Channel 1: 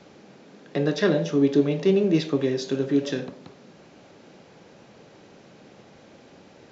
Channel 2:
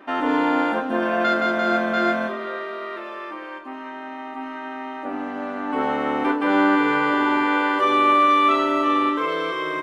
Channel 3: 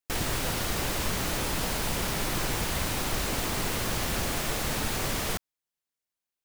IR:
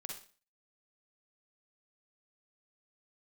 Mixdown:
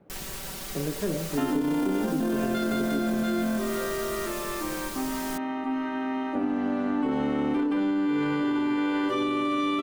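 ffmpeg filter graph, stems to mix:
-filter_complex "[0:a]lowpass=1500,lowshelf=f=500:g=7,volume=0.266[s0];[1:a]lowshelf=f=300:g=10,adelay=1300,volume=1.26[s1];[2:a]highshelf=f=4500:g=6.5,aecho=1:1:5.2:0.84,volume=0.251[s2];[s1][s2]amix=inputs=2:normalize=0,acrossover=split=380|3000[s3][s4][s5];[s4]acompressor=threshold=0.0141:ratio=2[s6];[s3][s6][s5]amix=inputs=3:normalize=0,alimiter=limit=0.188:level=0:latency=1:release=13,volume=1[s7];[s0][s7]amix=inputs=2:normalize=0,acompressor=threshold=0.0708:ratio=6"

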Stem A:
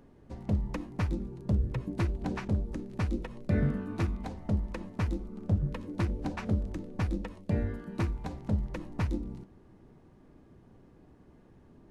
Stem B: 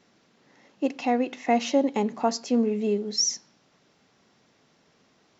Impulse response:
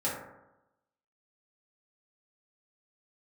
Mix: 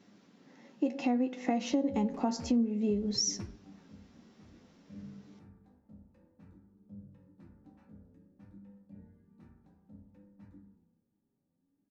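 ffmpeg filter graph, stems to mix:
-filter_complex "[0:a]adelay=1400,volume=0.188,asplit=2[s0][s1];[s1]volume=0.1[s2];[1:a]volume=0.944,asplit=3[s3][s4][s5];[s4]volume=0.106[s6];[s5]apad=whole_len=586661[s7];[s0][s7]sidechaingate=range=0.0398:threshold=0.002:ratio=16:detection=peak[s8];[2:a]atrim=start_sample=2205[s9];[s2][s6]amix=inputs=2:normalize=0[s10];[s10][s9]afir=irnorm=-1:irlink=0[s11];[s8][s3][s11]amix=inputs=3:normalize=0,equalizer=f=230:w=1.1:g=10.5,flanger=delay=9.8:depth=3.1:regen=47:speed=0.58:shape=sinusoidal,acompressor=threshold=0.0447:ratio=5"

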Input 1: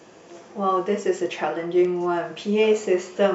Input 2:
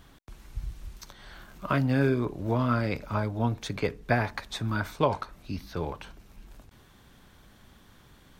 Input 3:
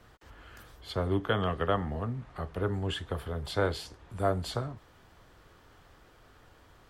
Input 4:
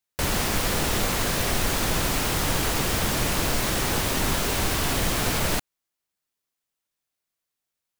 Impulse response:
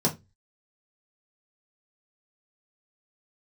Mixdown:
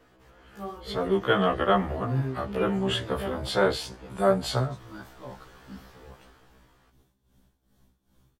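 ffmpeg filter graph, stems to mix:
-filter_complex "[0:a]lowpass=3100,volume=0.251[s0];[1:a]equalizer=f=2000:w=0.48:g=-10.5,tremolo=f=2.5:d=0.78,adelay=200,volume=0.668[s1];[2:a]dynaudnorm=f=110:g=17:m=3.76,equalizer=f=76:w=1.5:g=-5,volume=0.841[s2];[s0][s1][s2]amix=inputs=3:normalize=0,afftfilt=real='re*1.73*eq(mod(b,3),0)':imag='im*1.73*eq(mod(b,3),0)':win_size=2048:overlap=0.75"

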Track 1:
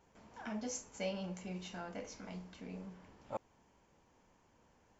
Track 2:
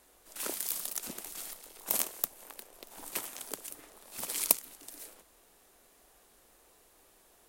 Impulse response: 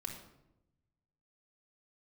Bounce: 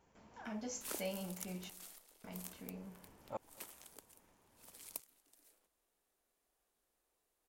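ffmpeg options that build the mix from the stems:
-filter_complex "[0:a]volume=0.75,asplit=3[s0][s1][s2];[s0]atrim=end=1.7,asetpts=PTS-STARTPTS,afade=t=out:st=1.696:d=0.004:c=hsin[s3];[s1]atrim=start=1.7:end=2.24,asetpts=PTS-STARTPTS,volume=0[s4];[s2]atrim=start=2.24,asetpts=PTS-STARTPTS,afade=t=in:d=0.004:c=hsin[s5];[s3][s4][s5]concat=n=3:v=0:a=1,asplit=3[s6][s7][s8];[s7]volume=0.0631[s9];[1:a]adelay=450,volume=0.531,afade=t=out:st=1.52:d=0.42:silence=0.354813,afade=t=out:st=3.85:d=0.22:silence=0.473151[s10];[s8]apad=whole_len=350076[s11];[s10][s11]sidechaincompress=threshold=0.002:ratio=8:attack=32:release=158[s12];[s9]aecho=0:1:228:1[s13];[s6][s12][s13]amix=inputs=3:normalize=0"

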